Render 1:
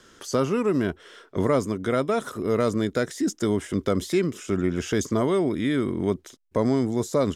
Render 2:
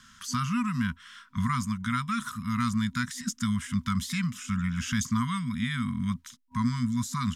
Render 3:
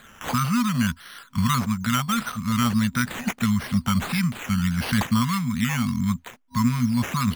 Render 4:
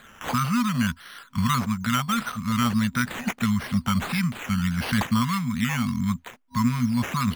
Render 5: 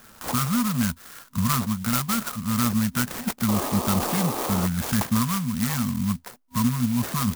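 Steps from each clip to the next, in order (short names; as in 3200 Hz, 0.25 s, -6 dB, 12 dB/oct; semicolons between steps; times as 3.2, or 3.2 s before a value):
FFT band-reject 250–960 Hz
decimation with a swept rate 8×, swing 60% 1.6 Hz; gain +6 dB
tone controls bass -2 dB, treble -3 dB
painted sound noise, 3.48–4.67, 210–1300 Hz -29 dBFS; clock jitter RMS 0.11 ms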